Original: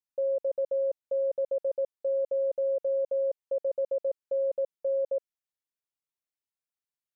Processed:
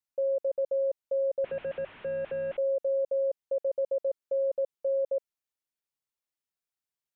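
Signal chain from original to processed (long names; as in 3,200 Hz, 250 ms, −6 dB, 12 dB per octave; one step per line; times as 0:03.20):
0:01.44–0:02.57: linear delta modulator 16 kbit/s, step −44 dBFS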